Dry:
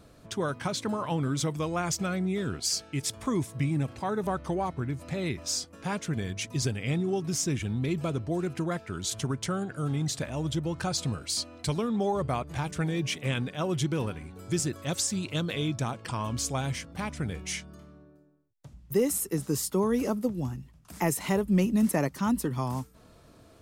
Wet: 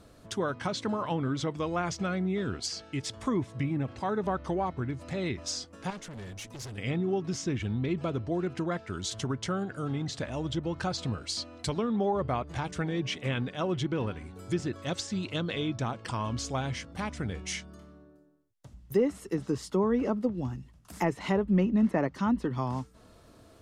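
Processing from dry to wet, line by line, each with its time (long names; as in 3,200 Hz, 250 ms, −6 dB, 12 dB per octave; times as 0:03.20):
0:05.90–0:06.78: tube saturation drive 38 dB, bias 0.5
whole clip: notch filter 2,400 Hz, Q 20; treble cut that deepens with the level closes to 2,300 Hz, closed at −23 dBFS; parametric band 150 Hz −6.5 dB 0.24 octaves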